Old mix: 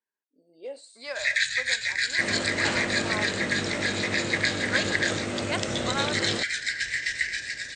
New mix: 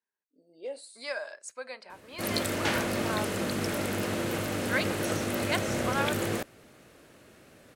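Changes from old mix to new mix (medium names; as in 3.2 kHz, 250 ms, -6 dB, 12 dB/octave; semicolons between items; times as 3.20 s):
first sound: muted; master: remove brick-wall FIR low-pass 9 kHz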